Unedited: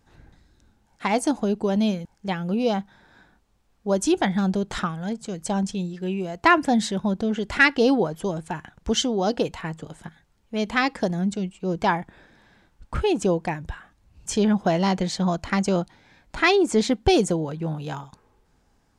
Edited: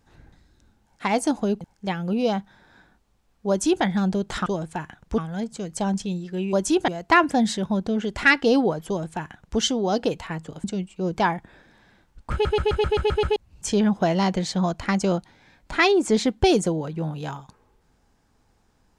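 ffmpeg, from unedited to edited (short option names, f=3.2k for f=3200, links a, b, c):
-filter_complex "[0:a]asplit=15[a][b][c][d][e][f][g][h][i][j][k][l][m][n][o];[a]atrim=end=1.612[p];[b]atrim=start=2.018:end=4.872[q];[c]atrim=start=8.208:end=8.932[r];[d]atrim=start=4.868:end=6.222[s];[e]atrim=start=3.898:end=4.252[t];[f]atrim=start=6.218:end=9.982[u];[g]atrim=start=11.278:end=13.092[v];[h]atrim=start=12.958:end=13.092[w];[i]atrim=start=12.958:end=13.092[x];[j]atrim=start=12.958:end=13.092[y];[k]atrim=start=12.958:end=13.092[z];[l]atrim=start=12.958:end=13.092[aa];[m]atrim=start=12.958:end=13.092[ab];[n]atrim=start=12.958:end=13.092[ac];[o]atrim=start=13.998[ad];[p][q]acrossfade=d=0.004:c1=hsin:c2=hsin[ae];[ae][r]acrossfade=d=0.004:c1=hsin:c2=hsin[af];[af][s]acrossfade=d=0.004:c1=hsin:c2=hsin[ag];[ag][t]acrossfade=d=0.004:c1=hsin:c2=hsin[ah];[ah][u]acrossfade=d=0.004:c1=hsin:c2=hsin[ai];[ai][v]acrossfade=d=0.004:c1=hsin:c2=hsin[aj];[aj][w]acrossfade=d=0.004:c1=hsin:c2=hsin[ak];[ak][x]acrossfade=d=0.004:c1=hsin:c2=hsin[al];[al][y]acrossfade=d=0.004:c1=hsin:c2=hsin[am];[am][z]acrossfade=d=0.004:c1=hsin:c2=hsin[an];[an][aa]acrossfade=d=0.004:c1=hsin:c2=hsin[ao];[ao][ab]acrossfade=d=0.004:c1=hsin:c2=hsin[ap];[ap][ac]acrossfade=d=0.004:c1=hsin:c2=hsin[aq];[aq][ad]acrossfade=d=0.004:c1=hsin:c2=hsin"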